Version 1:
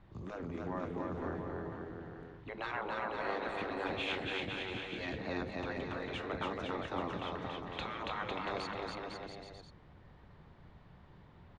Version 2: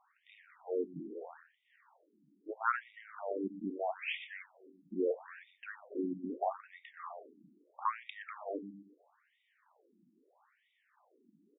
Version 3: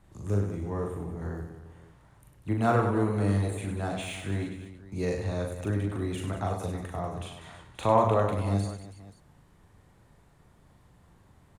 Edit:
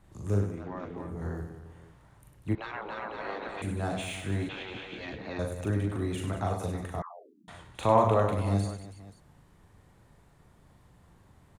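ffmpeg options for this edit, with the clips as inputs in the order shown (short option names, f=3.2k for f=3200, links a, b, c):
-filter_complex "[0:a]asplit=3[a][b][c];[2:a]asplit=5[d][e][f][g][h];[d]atrim=end=0.68[i];[a]atrim=start=0.44:end=1.19[j];[e]atrim=start=0.95:end=2.552[k];[b]atrim=start=2.548:end=3.622[l];[f]atrim=start=3.618:end=4.492[m];[c]atrim=start=4.488:end=5.392[n];[g]atrim=start=5.388:end=7.022[o];[1:a]atrim=start=7.018:end=7.482[p];[h]atrim=start=7.478[q];[i][j]acrossfade=d=0.24:c1=tri:c2=tri[r];[r][k]acrossfade=d=0.24:c1=tri:c2=tri[s];[s][l]acrossfade=d=0.004:c1=hsin:c2=hsin[t];[t][m]acrossfade=d=0.004:c1=hsin:c2=hsin[u];[u][n]acrossfade=d=0.004:c1=hsin:c2=hsin[v];[v][o]acrossfade=d=0.004:c1=hsin:c2=hsin[w];[w][p]acrossfade=d=0.004:c1=hsin:c2=hsin[x];[x][q]acrossfade=d=0.004:c1=hsin:c2=hsin"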